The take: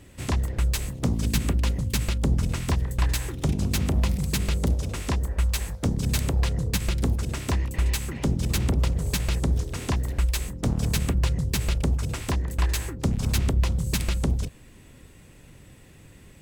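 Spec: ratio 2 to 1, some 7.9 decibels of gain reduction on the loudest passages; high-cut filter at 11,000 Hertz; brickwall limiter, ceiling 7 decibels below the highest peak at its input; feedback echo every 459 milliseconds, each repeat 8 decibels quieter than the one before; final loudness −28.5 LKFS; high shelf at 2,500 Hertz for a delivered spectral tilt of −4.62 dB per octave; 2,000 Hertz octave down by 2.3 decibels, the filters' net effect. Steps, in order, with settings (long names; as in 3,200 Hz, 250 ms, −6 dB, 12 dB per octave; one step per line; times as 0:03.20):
low-pass filter 11,000 Hz
parametric band 2,000 Hz −6.5 dB
high-shelf EQ 2,500 Hz +6.5 dB
downward compressor 2 to 1, threshold −33 dBFS
brickwall limiter −23 dBFS
repeating echo 459 ms, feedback 40%, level −8 dB
level +5 dB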